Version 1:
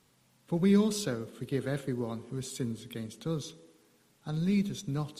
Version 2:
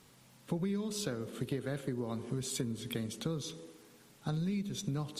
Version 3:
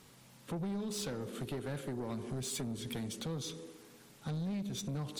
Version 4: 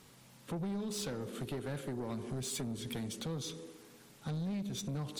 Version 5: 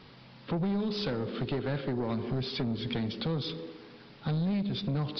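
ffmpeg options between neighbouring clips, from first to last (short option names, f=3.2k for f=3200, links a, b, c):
-af "acompressor=threshold=-38dB:ratio=12,volume=6dB"
-af "asoftclip=type=tanh:threshold=-35.5dB,volume=2dB"
-af anull
-af "aresample=11025,aresample=44100,volume=7.5dB"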